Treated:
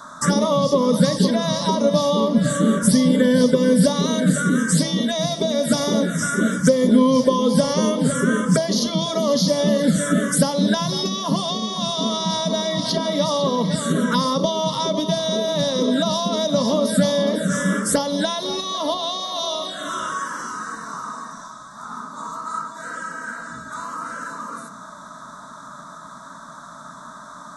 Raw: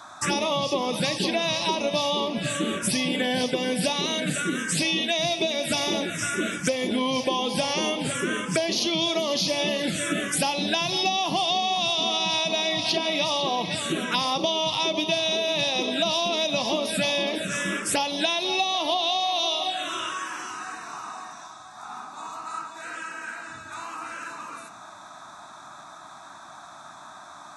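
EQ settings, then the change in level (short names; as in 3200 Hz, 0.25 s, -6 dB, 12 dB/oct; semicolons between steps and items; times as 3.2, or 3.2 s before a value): low shelf 400 Hz +12 dB; notches 50/100/150/200 Hz; fixed phaser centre 510 Hz, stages 8; +5.5 dB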